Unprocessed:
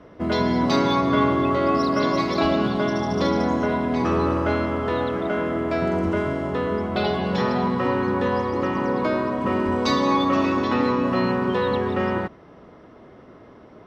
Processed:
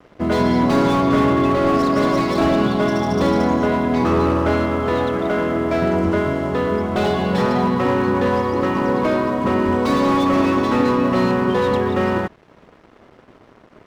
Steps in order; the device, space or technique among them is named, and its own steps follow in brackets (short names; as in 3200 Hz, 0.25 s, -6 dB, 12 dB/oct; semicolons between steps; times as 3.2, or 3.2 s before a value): early transistor amplifier (crossover distortion -48 dBFS; slew limiter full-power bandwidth 77 Hz); gain +5 dB